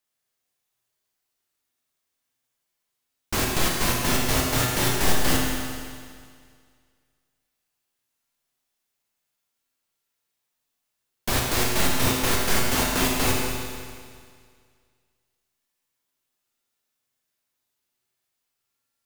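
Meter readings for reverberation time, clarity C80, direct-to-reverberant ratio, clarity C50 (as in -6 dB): 2.0 s, 1.5 dB, -2.5 dB, 0.5 dB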